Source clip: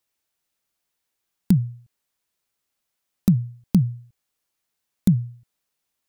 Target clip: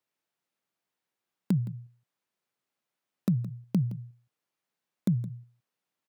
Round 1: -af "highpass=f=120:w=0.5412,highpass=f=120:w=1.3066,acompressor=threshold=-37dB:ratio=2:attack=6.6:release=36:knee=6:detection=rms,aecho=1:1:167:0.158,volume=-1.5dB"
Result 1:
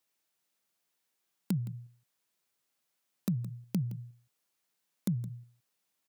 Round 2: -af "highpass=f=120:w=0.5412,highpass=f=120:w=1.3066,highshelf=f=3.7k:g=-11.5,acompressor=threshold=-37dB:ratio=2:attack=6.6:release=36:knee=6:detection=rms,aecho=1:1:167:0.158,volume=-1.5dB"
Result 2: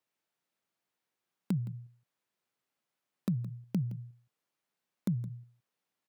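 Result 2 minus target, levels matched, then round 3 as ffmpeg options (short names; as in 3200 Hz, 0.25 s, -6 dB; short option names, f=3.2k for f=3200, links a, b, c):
compressor: peak gain reduction +5.5 dB
-af "highpass=f=120:w=0.5412,highpass=f=120:w=1.3066,highshelf=f=3.7k:g=-11.5,acompressor=threshold=-26dB:ratio=2:attack=6.6:release=36:knee=6:detection=rms,aecho=1:1:167:0.158,volume=-1.5dB"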